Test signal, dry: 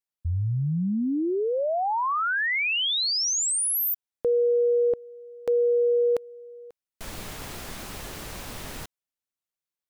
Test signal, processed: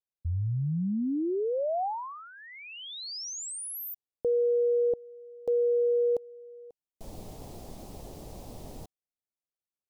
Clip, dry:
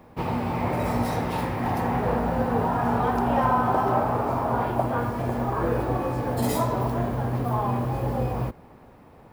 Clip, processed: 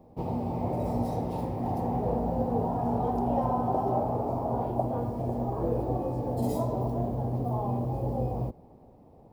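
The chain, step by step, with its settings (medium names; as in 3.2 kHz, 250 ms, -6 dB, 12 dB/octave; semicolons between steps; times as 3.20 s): FFT filter 760 Hz 0 dB, 1.5 kHz -21 dB, 4.9 kHz -9 dB; trim -3.5 dB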